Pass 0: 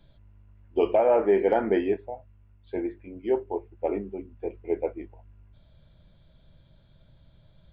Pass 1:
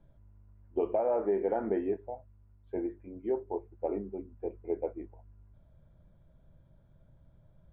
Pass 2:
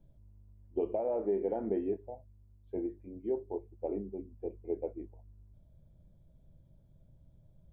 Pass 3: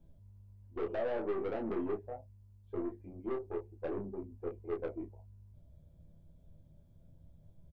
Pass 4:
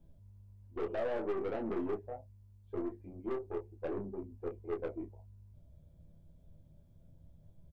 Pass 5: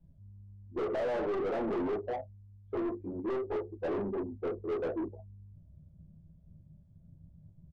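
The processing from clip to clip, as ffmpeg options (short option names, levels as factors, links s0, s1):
-af "lowpass=1300,acompressor=threshold=0.0562:ratio=2,volume=0.668"
-af "equalizer=f=1400:t=o:w=1.6:g=-14"
-filter_complex "[0:a]aeval=exprs='(tanh(50.1*val(0)+0.25)-tanh(0.25))/50.1':c=same,asplit=2[s0][s1];[s1]aecho=0:1:12|31:0.631|0.531[s2];[s0][s2]amix=inputs=2:normalize=0"
-af "aeval=exprs='clip(val(0),-1,0.0211)':c=same"
-filter_complex "[0:a]afftdn=nr=24:nf=-51,asplit=2[s0][s1];[s1]highpass=f=720:p=1,volume=25.1,asoftclip=type=tanh:threshold=0.0531[s2];[s0][s2]amix=inputs=2:normalize=0,lowpass=f=1100:p=1,volume=0.501"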